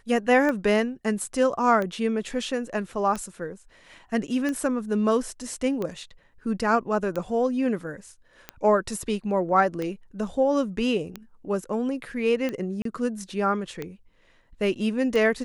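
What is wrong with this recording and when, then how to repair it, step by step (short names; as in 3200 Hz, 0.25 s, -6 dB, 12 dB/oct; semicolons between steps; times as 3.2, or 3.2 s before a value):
tick 45 rpm -17 dBFS
12.82–12.85 gap 33 ms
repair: de-click; interpolate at 12.82, 33 ms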